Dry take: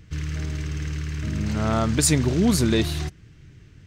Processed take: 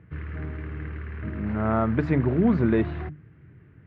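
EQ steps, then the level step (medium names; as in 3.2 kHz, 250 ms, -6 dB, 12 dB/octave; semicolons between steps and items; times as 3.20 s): high-pass 91 Hz; low-pass 1.9 kHz 24 dB/octave; hum notches 50/100/150/200/250/300 Hz; 0.0 dB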